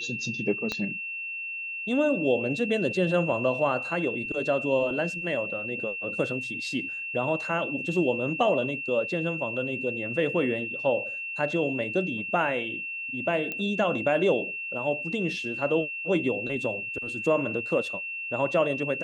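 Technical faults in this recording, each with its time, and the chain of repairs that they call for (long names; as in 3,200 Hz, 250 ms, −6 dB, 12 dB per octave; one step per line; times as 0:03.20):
whistle 2,700 Hz −32 dBFS
0:00.72: click −16 dBFS
0:13.52: click −18 dBFS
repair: click removal
notch filter 2,700 Hz, Q 30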